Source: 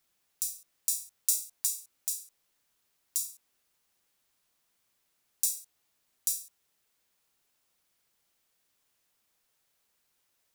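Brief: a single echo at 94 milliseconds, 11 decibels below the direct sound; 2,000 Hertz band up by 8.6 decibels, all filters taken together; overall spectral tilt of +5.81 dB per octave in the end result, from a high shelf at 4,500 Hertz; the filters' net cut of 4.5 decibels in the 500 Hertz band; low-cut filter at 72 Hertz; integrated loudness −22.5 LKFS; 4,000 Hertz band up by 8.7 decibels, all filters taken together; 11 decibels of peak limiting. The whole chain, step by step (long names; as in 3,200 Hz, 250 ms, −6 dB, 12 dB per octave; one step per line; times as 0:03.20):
high-pass filter 72 Hz
parametric band 500 Hz −6.5 dB
parametric band 2,000 Hz +7 dB
parametric band 4,000 Hz +8 dB
high-shelf EQ 4,500 Hz +4.5 dB
brickwall limiter −8 dBFS
single-tap delay 94 ms −11 dB
level +7.5 dB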